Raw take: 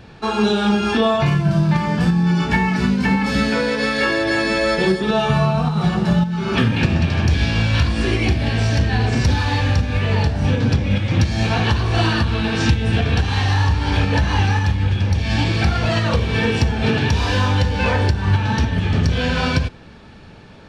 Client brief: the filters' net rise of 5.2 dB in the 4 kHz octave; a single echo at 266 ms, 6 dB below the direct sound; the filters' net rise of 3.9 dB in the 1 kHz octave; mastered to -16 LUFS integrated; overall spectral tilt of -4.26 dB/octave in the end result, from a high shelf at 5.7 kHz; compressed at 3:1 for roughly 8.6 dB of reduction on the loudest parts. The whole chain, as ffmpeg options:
-af "equalizer=f=1000:t=o:g=4.5,equalizer=f=4000:t=o:g=5,highshelf=f=5700:g=3.5,acompressor=threshold=0.0708:ratio=3,aecho=1:1:266:0.501,volume=2.24"

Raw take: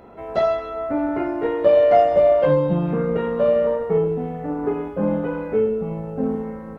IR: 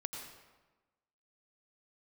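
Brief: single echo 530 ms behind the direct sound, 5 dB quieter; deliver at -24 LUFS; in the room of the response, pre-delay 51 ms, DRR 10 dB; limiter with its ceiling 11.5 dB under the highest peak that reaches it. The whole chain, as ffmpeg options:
-filter_complex "[0:a]alimiter=limit=0.158:level=0:latency=1,aecho=1:1:530:0.562,asplit=2[s0][s1];[1:a]atrim=start_sample=2205,adelay=51[s2];[s1][s2]afir=irnorm=-1:irlink=0,volume=0.335[s3];[s0][s3]amix=inputs=2:normalize=0,volume=0.841"

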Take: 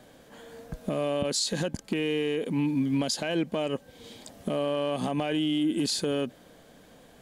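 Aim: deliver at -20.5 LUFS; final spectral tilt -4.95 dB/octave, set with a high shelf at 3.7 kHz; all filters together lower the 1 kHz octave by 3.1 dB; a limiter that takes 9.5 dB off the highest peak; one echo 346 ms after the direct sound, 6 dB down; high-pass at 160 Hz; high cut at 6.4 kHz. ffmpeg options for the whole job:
-af "highpass=160,lowpass=6400,equalizer=f=1000:t=o:g=-4,highshelf=f=3700:g=-7.5,alimiter=level_in=1.68:limit=0.0631:level=0:latency=1,volume=0.596,aecho=1:1:346:0.501,volume=6.31"

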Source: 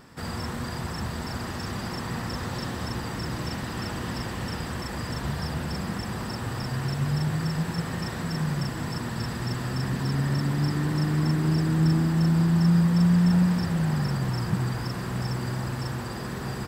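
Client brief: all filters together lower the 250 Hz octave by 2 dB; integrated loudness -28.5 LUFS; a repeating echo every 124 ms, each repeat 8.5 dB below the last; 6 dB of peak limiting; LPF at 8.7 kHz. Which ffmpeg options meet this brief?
-af "lowpass=8700,equalizer=f=250:t=o:g=-4,alimiter=limit=0.1:level=0:latency=1,aecho=1:1:124|248|372|496:0.376|0.143|0.0543|0.0206,volume=1.12"

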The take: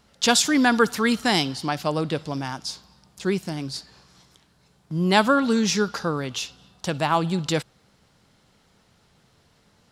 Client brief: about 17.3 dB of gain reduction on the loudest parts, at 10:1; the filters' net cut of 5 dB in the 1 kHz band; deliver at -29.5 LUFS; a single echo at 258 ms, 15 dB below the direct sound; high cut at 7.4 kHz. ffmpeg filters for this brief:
-af "lowpass=7400,equalizer=f=1000:t=o:g=-7,acompressor=threshold=0.02:ratio=10,aecho=1:1:258:0.178,volume=2.66"

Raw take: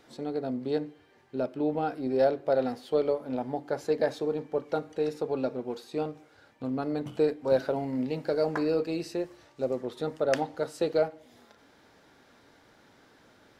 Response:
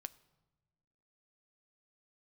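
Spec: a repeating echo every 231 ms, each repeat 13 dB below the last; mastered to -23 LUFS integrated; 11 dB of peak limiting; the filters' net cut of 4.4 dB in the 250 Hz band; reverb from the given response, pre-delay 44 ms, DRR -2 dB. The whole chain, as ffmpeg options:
-filter_complex "[0:a]equalizer=f=250:t=o:g=-5.5,alimiter=limit=0.0631:level=0:latency=1,aecho=1:1:231|462|693:0.224|0.0493|0.0108,asplit=2[s0][s1];[1:a]atrim=start_sample=2205,adelay=44[s2];[s1][s2]afir=irnorm=-1:irlink=0,volume=2.11[s3];[s0][s3]amix=inputs=2:normalize=0,volume=2.51"

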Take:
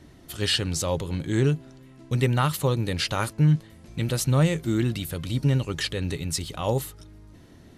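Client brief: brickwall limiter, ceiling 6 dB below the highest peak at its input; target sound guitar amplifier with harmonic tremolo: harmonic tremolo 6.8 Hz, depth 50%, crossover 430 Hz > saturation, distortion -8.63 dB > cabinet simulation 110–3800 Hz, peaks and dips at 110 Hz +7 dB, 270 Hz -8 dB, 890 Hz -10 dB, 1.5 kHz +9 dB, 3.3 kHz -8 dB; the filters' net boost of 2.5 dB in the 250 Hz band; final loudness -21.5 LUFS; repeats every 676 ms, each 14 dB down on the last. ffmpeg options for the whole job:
-filter_complex "[0:a]equalizer=f=250:t=o:g=8,alimiter=limit=0.224:level=0:latency=1,aecho=1:1:676|1352:0.2|0.0399,acrossover=split=430[s0][s1];[s0]aeval=exprs='val(0)*(1-0.5/2+0.5/2*cos(2*PI*6.8*n/s))':c=same[s2];[s1]aeval=exprs='val(0)*(1-0.5/2-0.5/2*cos(2*PI*6.8*n/s))':c=same[s3];[s2][s3]amix=inputs=2:normalize=0,asoftclip=threshold=0.0531,highpass=110,equalizer=f=110:t=q:w=4:g=7,equalizer=f=270:t=q:w=4:g=-8,equalizer=f=890:t=q:w=4:g=-10,equalizer=f=1500:t=q:w=4:g=9,equalizer=f=3300:t=q:w=4:g=-8,lowpass=f=3800:w=0.5412,lowpass=f=3800:w=1.3066,volume=3.55"

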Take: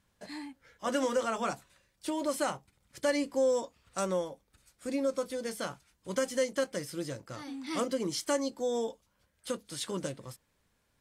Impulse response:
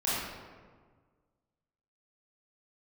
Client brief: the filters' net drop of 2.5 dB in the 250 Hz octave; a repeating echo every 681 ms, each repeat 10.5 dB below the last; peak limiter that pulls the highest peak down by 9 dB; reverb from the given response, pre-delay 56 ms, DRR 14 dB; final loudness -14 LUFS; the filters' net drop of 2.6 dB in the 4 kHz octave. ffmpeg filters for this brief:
-filter_complex "[0:a]equalizer=f=250:t=o:g=-3,equalizer=f=4000:t=o:g=-3.5,alimiter=level_in=1.33:limit=0.0631:level=0:latency=1,volume=0.75,aecho=1:1:681|1362|2043:0.299|0.0896|0.0269,asplit=2[s0][s1];[1:a]atrim=start_sample=2205,adelay=56[s2];[s1][s2]afir=irnorm=-1:irlink=0,volume=0.0668[s3];[s0][s3]amix=inputs=2:normalize=0,volume=15.8"

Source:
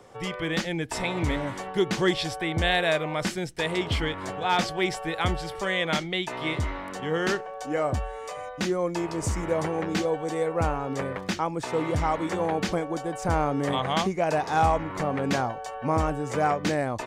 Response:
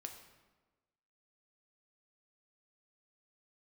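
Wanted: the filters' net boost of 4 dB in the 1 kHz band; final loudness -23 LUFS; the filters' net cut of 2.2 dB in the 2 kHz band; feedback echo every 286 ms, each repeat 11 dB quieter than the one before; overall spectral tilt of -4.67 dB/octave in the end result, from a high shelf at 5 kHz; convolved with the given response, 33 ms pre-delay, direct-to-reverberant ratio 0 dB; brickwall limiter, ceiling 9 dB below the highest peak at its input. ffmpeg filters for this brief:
-filter_complex "[0:a]equalizer=f=1000:t=o:g=6.5,equalizer=f=2000:t=o:g=-4,highshelf=f=5000:g=-6,alimiter=limit=0.133:level=0:latency=1,aecho=1:1:286|572|858:0.282|0.0789|0.0221,asplit=2[s0][s1];[1:a]atrim=start_sample=2205,adelay=33[s2];[s1][s2]afir=irnorm=-1:irlink=0,volume=1.58[s3];[s0][s3]amix=inputs=2:normalize=0,volume=1.26"

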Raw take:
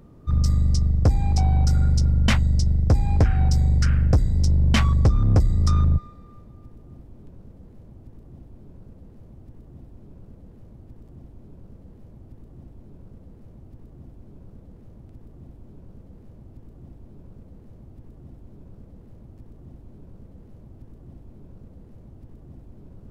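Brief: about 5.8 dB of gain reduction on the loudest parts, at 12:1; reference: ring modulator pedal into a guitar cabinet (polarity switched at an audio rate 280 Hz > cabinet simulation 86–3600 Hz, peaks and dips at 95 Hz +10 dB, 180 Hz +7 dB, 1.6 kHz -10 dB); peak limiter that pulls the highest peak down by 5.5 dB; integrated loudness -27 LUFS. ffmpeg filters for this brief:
-af "acompressor=threshold=0.1:ratio=12,alimiter=limit=0.0944:level=0:latency=1,aeval=exprs='val(0)*sgn(sin(2*PI*280*n/s))':c=same,highpass=86,equalizer=f=95:t=q:w=4:g=10,equalizer=f=180:t=q:w=4:g=7,equalizer=f=1600:t=q:w=4:g=-10,lowpass=f=3600:w=0.5412,lowpass=f=3600:w=1.3066,volume=0.794"

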